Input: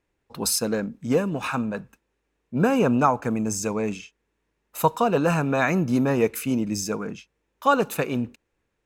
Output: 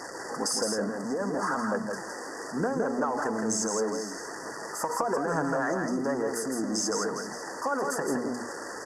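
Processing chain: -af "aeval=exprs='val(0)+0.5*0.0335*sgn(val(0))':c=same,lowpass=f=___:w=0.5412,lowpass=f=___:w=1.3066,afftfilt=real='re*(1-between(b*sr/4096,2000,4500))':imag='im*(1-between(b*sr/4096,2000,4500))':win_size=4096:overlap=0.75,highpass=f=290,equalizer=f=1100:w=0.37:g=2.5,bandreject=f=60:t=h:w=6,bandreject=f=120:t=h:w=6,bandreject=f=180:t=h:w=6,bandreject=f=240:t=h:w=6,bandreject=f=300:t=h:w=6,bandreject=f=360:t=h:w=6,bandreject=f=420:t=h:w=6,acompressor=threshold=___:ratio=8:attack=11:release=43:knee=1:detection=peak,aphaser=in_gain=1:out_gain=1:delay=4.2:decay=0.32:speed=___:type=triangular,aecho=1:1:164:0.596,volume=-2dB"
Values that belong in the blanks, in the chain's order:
9400, 9400, -27dB, 1.1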